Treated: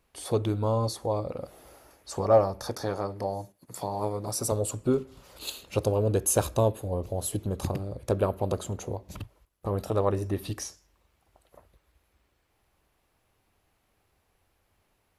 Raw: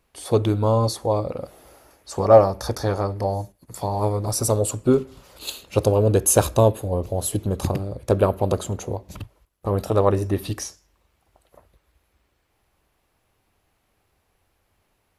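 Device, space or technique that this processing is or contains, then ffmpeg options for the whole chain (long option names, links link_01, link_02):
parallel compression: -filter_complex "[0:a]asplit=2[link_01][link_02];[link_02]acompressor=threshold=-32dB:ratio=6,volume=-0.5dB[link_03];[link_01][link_03]amix=inputs=2:normalize=0,asettb=1/sr,asplit=3[link_04][link_05][link_06];[link_04]atrim=end=2.634[link_07];[link_05]atrim=start=2.63:end=4.52,asetpts=PTS-STARTPTS,afade=type=in:duration=0.004:curve=qsin,afade=type=out:start_time=1.886:duration=0.004:curve=qsin,highpass=130[link_08];[link_06]atrim=start=4.516[link_09];[link_07][link_08]acrossfade=duration=0.004:curve1=hsin:curve2=qsin[link_10];[link_10][link_09]acrossfade=duration=0.004:curve1=qsin:curve2=hsin,volume=-8.5dB"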